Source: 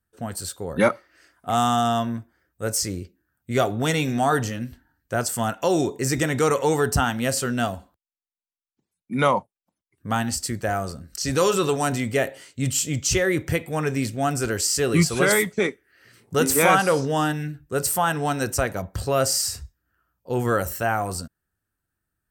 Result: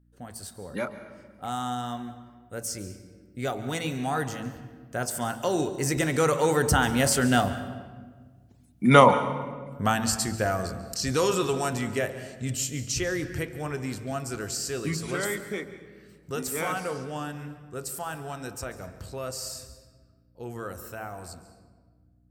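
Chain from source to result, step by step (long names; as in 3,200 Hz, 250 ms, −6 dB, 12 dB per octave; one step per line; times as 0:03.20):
source passing by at 0:08.44, 12 m/s, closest 8.8 metres
in parallel at −1 dB: downward compressor, threshold −49 dBFS, peak gain reduction 29 dB
on the sum: mains hum 60 Hz, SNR 32 dB
hum removal 55.72 Hz, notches 22
on a send at −12 dB: convolution reverb RT60 1.5 s, pre-delay 141 ms
on the sum: level +7 dB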